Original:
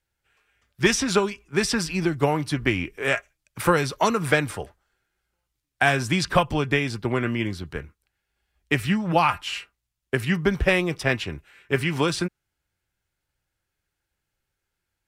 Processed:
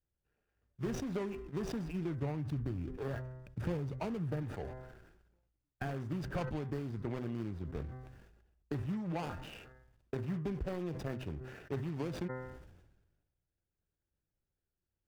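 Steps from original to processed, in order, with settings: median filter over 41 samples; 2.22–4.43 s: peaking EQ 88 Hz +10 dB 2.4 oct; compression, threshold -29 dBFS, peak gain reduction 15.5 dB; treble shelf 5.8 kHz -6 dB; band-stop 4 kHz, Q 24; de-hum 128.3 Hz, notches 16; decay stretcher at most 46 dB/s; trim -6 dB

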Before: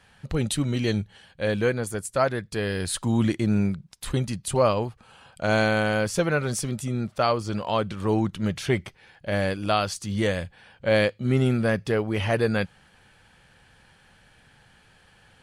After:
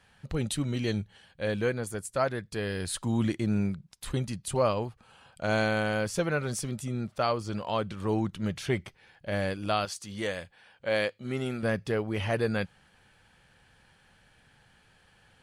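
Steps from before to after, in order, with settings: 9.85–11.63 s: bass shelf 240 Hz -11.5 dB; trim -5 dB

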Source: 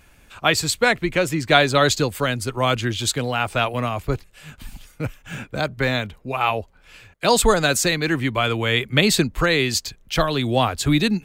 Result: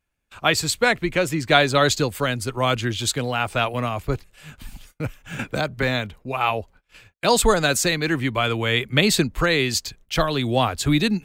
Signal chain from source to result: gate -45 dBFS, range -25 dB; 5.39–5.83 s: three bands compressed up and down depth 70%; trim -1 dB

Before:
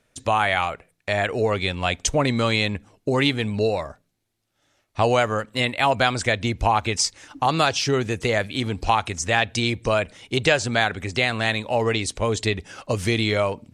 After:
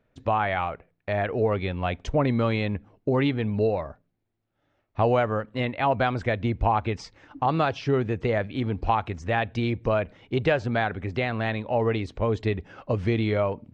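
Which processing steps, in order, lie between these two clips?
tape spacing loss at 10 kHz 39 dB

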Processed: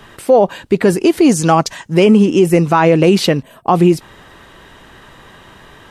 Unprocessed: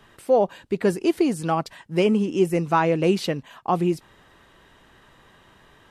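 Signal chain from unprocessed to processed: 1.29–1.94 s: peaking EQ 6.4 kHz +11.5 dB 0.48 oct; 3.43–3.68 s: time-frequency box 690–7800 Hz -12 dB; loudness maximiser +14 dB; trim -1 dB

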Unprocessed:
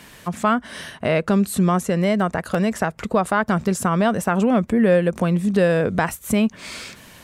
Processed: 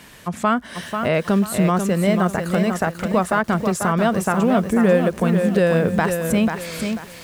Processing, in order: bit-crushed delay 491 ms, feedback 35%, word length 7-bit, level -6 dB

